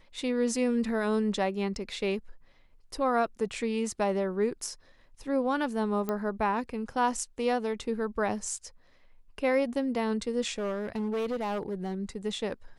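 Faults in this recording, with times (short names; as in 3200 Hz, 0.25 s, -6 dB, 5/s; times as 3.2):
6.09 pop -18 dBFS
10.52–11.94 clipped -27.5 dBFS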